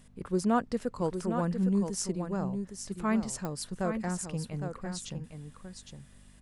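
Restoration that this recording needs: de-click; de-hum 49.4 Hz, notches 5; expander -46 dBFS, range -21 dB; inverse comb 0.81 s -7.5 dB

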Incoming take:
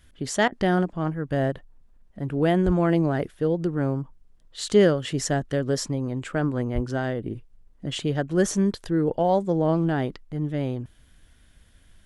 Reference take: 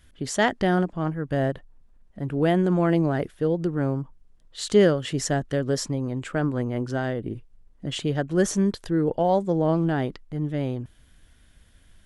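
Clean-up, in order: 2.65–2.77 HPF 140 Hz 24 dB/oct; 6.74–6.86 HPF 140 Hz 24 dB/oct; interpolate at 0.48, 40 ms

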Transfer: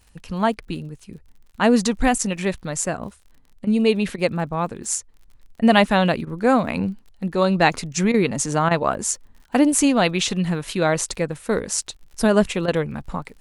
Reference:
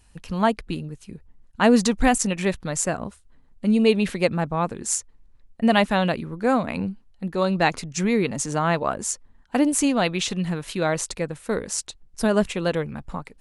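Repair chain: de-click; interpolate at 0.6/3.65/4.16/6.25/8.12/8.69/11.97/12.66, 19 ms; gain 0 dB, from 5.28 s -3.5 dB

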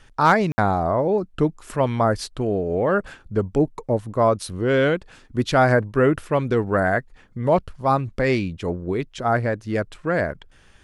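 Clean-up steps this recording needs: clip repair -5.5 dBFS; room tone fill 0.52–0.58

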